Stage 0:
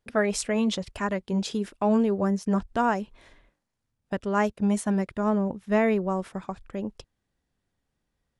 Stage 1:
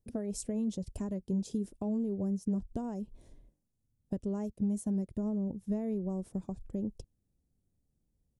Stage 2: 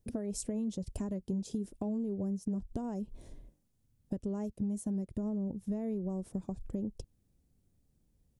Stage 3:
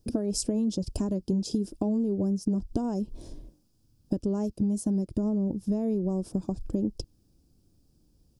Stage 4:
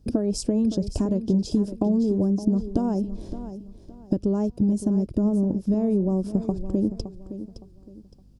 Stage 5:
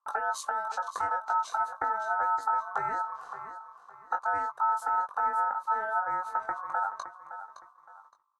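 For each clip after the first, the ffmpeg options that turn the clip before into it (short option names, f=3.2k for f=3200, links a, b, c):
-af "acompressor=threshold=-30dB:ratio=4,firequalizer=gain_entry='entry(110,0);entry(1300,-27);entry(2300,-25);entry(5900,-10);entry(9200,-5)':delay=0.05:min_phase=1,volume=3dB"
-af "acompressor=threshold=-42dB:ratio=2.5,volume=6dB"
-af "equalizer=f=315:t=o:w=0.33:g=8,equalizer=f=2k:t=o:w=0.33:g=-12,equalizer=f=5k:t=o:w=0.33:g=11,volume=7dB"
-filter_complex "[0:a]lowpass=f=3.4k:p=1,aeval=exprs='val(0)+0.00126*(sin(2*PI*50*n/s)+sin(2*PI*2*50*n/s)/2+sin(2*PI*3*50*n/s)/3+sin(2*PI*4*50*n/s)/4+sin(2*PI*5*50*n/s)/5)':c=same,asplit=2[a][b];[b]aecho=0:1:565|1130|1695:0.251|0.0754|0.0226[c];[a][c]amix=inputs=2:normalize=0,volume=5dB"
-filter_complex "[0:a]agate=range=-19dB:threshold=-48dB:ratio=16:detection=peak,aeval=exprs='val(0)*sin(2*PI*1100*n/s)':c=same,asplit=2[a][b];[b]adelay=20,volume=-5.5dB[c];[a][c]amix=inputs=2:normalize=0,volume=-6dB"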